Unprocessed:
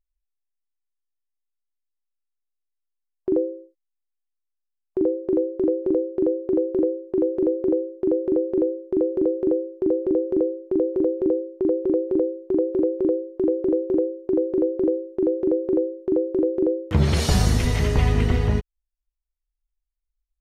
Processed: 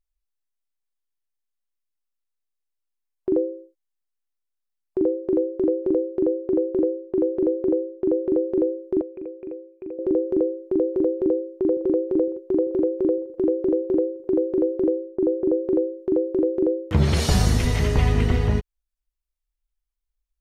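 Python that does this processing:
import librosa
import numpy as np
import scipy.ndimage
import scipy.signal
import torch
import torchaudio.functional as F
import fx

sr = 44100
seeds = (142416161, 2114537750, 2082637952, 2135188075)

y = fx.air_absorb(x, sr, metres=100.0, at=(6.19, 8.32))
y = fx.ladder_lowpass(y, sr, hz=2500.0, resonance_pct=90, at=(9.01, 9.99))
y = fx.echo_throw(y, sr, start_s=11.19, length_s=0.69, ms=510, feedback_pct=70, wet_db=-17.0)
y = fx.lowpass(y, sr, hz=1400.0, slope=12, at=(14.94, 15.63), fade=0.02)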